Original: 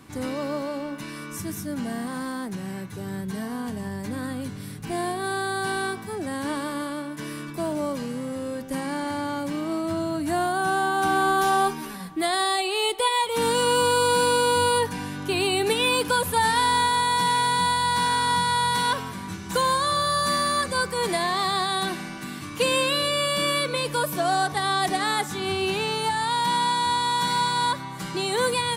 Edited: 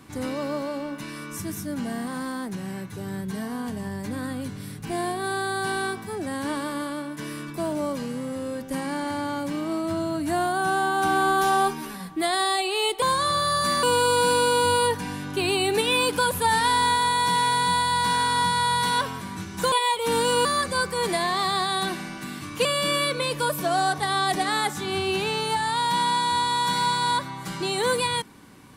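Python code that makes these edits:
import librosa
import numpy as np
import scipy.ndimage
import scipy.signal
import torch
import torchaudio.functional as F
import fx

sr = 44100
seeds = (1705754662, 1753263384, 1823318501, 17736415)

y = fx.edit(x, sr, fx.swap(start_s=13.02, length_s=0.73, other_s=19.64, other_length_s=0.81),
    fx.cut(start_s=22.65, length_s=0.54), tone=tone)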